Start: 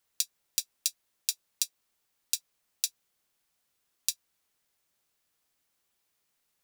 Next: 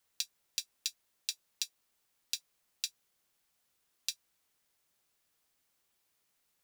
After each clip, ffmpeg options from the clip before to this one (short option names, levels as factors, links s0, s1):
-filter_complex "[0:a]acrossover=split=5200[s0][s1];[s1]acompressor=threshold=0.0224:ratio=4:attack=1:release=60[s2];[s0][s2]amix=inputs=2:normalize=0"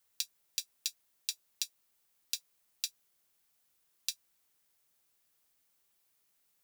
-af "highshelf=f=9400:g=7,volume=0.841"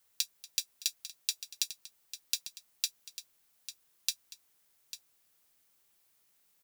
-af "aecho=1:1:237|847:0.119|0.237,volume=1.5"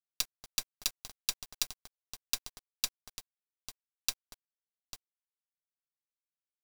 -af "acrusher=bits=5:dc=4:mix=0:aa=0.000001"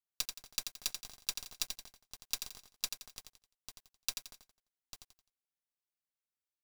-af "aecho=1:1:86|172|258|344:0.447|0.156|0.0547|0.0192,volume=0.631"